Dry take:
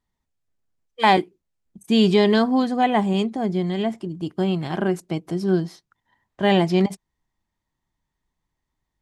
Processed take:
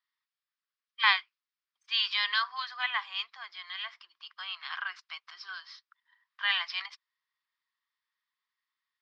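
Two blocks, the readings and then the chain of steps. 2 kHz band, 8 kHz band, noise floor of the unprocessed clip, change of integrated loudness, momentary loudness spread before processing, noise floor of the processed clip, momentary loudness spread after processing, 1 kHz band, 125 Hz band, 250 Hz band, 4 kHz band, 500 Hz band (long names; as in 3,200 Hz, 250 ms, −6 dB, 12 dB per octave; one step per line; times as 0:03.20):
−0.5 dB, can't be measured, −81 dBFS, −9.5 dB, 10 LU, below −85 dBFS, 18 LU, −13.0 dB, below −40 dB, below −40 dB, −0.5 dB, below −40 dB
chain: Chebyshev band-pass filter 1,100–5,200 Hz, order 4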